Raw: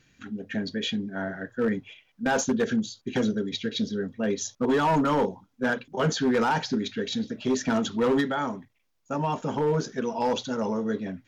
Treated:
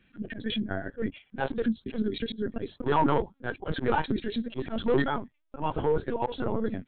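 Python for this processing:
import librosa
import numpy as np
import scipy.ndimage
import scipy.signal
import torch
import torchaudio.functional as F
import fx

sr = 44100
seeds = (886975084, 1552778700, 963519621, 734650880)

y = fx.stretch_vocoder(x, sr, factor=0.61)
y = fx.lpc_vocoder(y, sr, seeds[0], excitation='pitch_kept', order=16)
y = fx.auto_swell(y, sr, attack_ms=100.0)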